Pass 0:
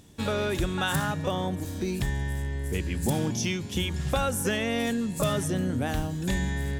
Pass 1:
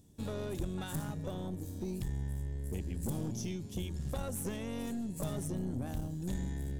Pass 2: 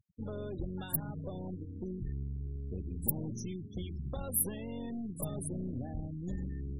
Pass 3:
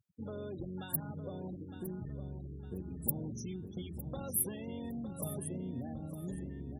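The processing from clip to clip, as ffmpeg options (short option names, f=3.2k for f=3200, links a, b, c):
-af "equalizer=f=1.9k:t=o:w=2.9:g=-13,aeval=exprs='(tanh(17.8*val(0)+0.5)-tanh(0.5))/17.8':c=same,volume=-4.5dB"
-af "afftfilt=real='re*gte(hypot(re,im),0.01)':imag='im*gte(hypot(re,im),0.01)':win_size=1024:overlap=0.75,aexciter=amount=8.7:drive=9.5:freq=11k,volume=-1.5dB"
-filter_complex "[0:a]highpass=98,asplit=2[a][b];[b]adelay=909,lowpass=f=4.8k:p=1,volume=-9dB,asplit=2[c][d];[d]adelay=909,lowpass=f=4.8k:p=1,volume=0.44,asplit=2[e][f];[f]adelay=909,lowpass=f=4.8k:p=1,volume=0.44,asplit=2[g][h];[h]adelay=909,lowpass=f=4.8k:p=1,volume=0.44,asplit=2[i][j];[j]adelay=909,lowpass=f=4.8k:p=1,volume=0.44[k];[c][e][g][i][k]amix=inputs=5:normalize=0[l];[a][l]amix=inputs=2:normalize=0,volume=-1.5dB"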